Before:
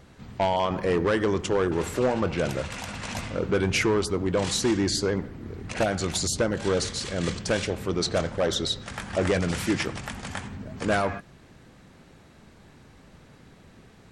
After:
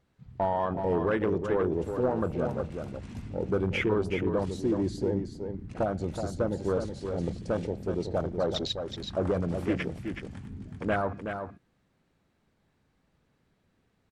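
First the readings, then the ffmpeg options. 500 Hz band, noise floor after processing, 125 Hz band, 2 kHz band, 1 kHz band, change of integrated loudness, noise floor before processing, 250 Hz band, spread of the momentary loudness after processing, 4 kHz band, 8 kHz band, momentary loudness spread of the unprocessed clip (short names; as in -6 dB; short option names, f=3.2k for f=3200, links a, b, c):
-3.0 dB, -72 dBFS, -3.0 dB, -7.5 dB, -4.0 dB, -4.0 dB, -53 dBFS, -3.0 dB, 11 LU, -10.5 dB, -20.0 dB, 11 LU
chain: -af "afwtdn=0.0398,equalizer=f=6.8k:w=1.5:g=-2.5,aecho=1:1:373:0.447,volume=-3.5dB"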